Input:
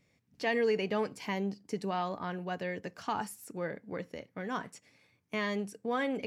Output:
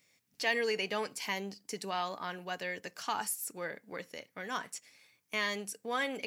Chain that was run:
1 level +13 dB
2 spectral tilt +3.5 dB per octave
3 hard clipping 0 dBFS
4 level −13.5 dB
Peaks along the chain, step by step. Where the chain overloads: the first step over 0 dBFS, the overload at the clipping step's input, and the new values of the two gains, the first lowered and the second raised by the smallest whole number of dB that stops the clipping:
−6.0, −4.0, −4.0, −17.5 dBFS
no step passes full scale

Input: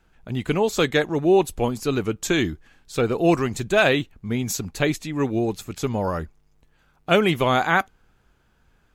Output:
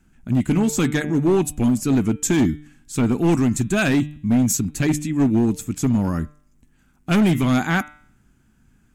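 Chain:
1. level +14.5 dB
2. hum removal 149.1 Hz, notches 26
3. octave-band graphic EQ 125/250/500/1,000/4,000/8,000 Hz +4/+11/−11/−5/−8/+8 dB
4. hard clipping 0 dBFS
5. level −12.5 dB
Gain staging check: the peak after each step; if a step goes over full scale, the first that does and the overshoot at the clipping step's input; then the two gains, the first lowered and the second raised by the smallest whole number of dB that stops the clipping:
+10.0, +9.5, +9.0, 0.0, −12.5 dBFS
step 1, 9.0 dB
step 1 +5.5 dB, step 5 −3.5 dB

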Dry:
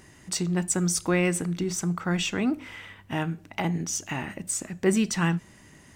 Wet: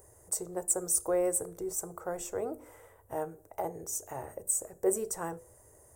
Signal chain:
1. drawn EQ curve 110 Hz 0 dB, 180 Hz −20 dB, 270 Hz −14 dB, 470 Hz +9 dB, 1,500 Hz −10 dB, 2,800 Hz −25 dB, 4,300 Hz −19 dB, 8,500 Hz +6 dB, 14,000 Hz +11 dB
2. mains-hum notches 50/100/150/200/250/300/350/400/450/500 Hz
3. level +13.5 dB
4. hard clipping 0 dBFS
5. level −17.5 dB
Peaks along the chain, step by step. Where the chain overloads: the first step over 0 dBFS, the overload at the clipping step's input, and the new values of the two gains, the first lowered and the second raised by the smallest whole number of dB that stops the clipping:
−10.0, −10.0, +3.5, 0.0, −17.5 dBFS
step 3, 3.5 dB
step 3 +9.5 dB, step 5 −13.5 dB

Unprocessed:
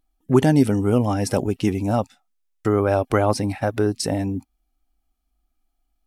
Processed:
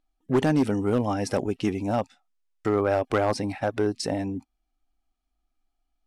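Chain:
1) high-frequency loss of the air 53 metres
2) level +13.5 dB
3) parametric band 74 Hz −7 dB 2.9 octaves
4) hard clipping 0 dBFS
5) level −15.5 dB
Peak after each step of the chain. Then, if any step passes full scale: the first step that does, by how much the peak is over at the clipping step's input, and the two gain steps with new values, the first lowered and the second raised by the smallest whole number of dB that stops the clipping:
−4.0, +9.5, +7.5, 0.0, −15.5 dBFS
step 2, 7.5 dB
step 2 +5.5 dB, step 5 −7.5 dB

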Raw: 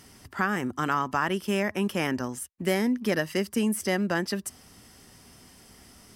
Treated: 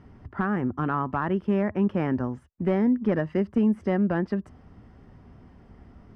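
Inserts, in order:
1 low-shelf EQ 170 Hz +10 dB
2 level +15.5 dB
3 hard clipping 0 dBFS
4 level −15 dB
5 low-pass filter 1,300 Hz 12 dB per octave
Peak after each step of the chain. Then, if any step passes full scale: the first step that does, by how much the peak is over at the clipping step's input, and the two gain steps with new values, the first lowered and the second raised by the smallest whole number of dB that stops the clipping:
−10.5, +5.0, 0.0, −15.0, −14.5 dBFS
step 2, 5.0 dB
step 2 +10.5 dB, step 4 −10 dB

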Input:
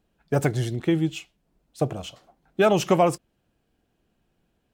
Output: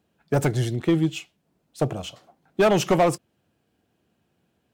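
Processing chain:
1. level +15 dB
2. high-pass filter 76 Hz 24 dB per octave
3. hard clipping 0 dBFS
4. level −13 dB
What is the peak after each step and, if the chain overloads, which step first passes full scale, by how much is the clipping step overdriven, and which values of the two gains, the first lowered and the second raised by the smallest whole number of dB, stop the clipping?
+7.5, +9.0, 0.0, −13.0 dBFS
step 1, 9.0 dB
step 1 +6 dB, step 4 −4 dB

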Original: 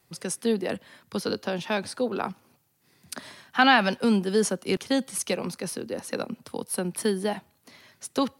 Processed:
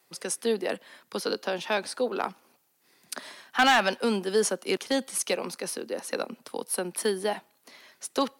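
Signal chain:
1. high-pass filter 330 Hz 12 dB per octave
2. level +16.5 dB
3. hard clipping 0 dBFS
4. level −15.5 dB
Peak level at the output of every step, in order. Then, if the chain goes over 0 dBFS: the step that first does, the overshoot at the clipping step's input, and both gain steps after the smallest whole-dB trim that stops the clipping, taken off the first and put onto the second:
−7.0, +9.5, 0.0, −15.5 dBFS
step 2, 9.5 dB
step 2 +6.5 dB, step 4 −5.5 dB

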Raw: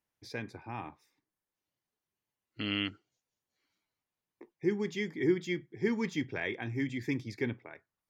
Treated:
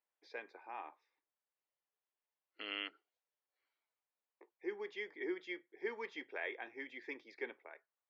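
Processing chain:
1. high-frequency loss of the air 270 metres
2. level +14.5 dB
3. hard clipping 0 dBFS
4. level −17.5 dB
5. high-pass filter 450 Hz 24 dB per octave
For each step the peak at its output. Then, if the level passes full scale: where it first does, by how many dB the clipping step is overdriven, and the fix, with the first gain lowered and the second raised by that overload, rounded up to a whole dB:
−17.5, −3.0, −3.0, −20.5, −26.0 dBFS
no step passes full scale

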